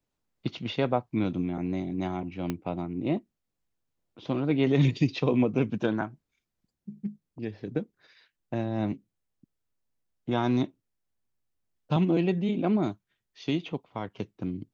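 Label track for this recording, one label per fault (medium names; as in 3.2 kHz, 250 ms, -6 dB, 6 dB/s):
2.500000	2.500000	pop -17 dBFS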